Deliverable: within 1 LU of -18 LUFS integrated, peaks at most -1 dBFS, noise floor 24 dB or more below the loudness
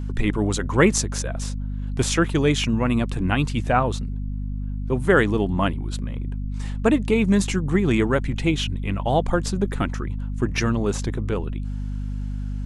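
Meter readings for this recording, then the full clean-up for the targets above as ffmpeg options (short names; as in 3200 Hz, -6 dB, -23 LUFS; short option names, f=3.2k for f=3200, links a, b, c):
hum 50 Hz; harmonics up to 250 Hz; hum level -25 dBFS; loudness -23.5 LUFS; peak -4.0 dBFS; loudness target -18.0 LUFS
-> -af "bandreject=f=50:t=h:w=4,bandreject=f=100:t=h:w=4,bandreject=f=150:t=h:w=4,bandreject=f=200:t=h:w=4,bandreject=f=250:t=h:w=4"
-af "volume=5.5dB,alimiter=limit=-1dB:level=0:latency=1"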